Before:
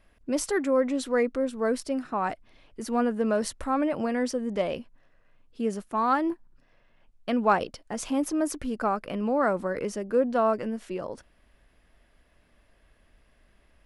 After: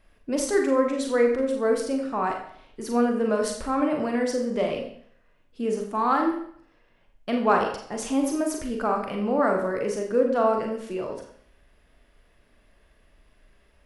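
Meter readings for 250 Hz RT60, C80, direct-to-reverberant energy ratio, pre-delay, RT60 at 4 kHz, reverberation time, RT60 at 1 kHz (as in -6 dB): 0.60 s, 8.5 dB, 1.5 dB, 30 ms, 0.55 s, 0.60 s, 0.65 s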